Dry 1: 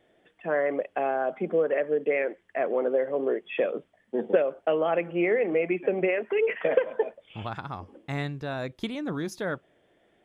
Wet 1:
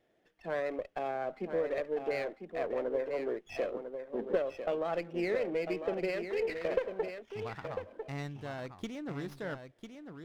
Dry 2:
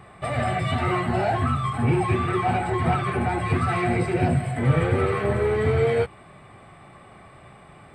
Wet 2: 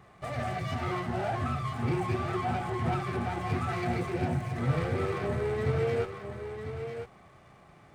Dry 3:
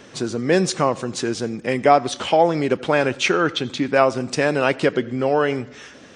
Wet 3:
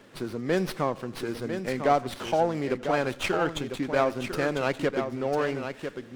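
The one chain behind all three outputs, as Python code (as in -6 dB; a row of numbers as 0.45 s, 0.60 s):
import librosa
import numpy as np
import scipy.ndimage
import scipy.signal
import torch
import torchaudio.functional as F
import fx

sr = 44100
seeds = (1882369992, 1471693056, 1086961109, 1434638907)

y = x + 10.0 ** (-8.0 / 20.0) * np.pad(x, (int(999 * sr / 1000.0), 0))[:len(x)]
y = fx.running_max(y, sr, window=5)
y = F.gain(torch.from_numpy(y), -8.5).numpy()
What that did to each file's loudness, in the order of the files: -8.0 LU, -8.5 LU, -8.0 LU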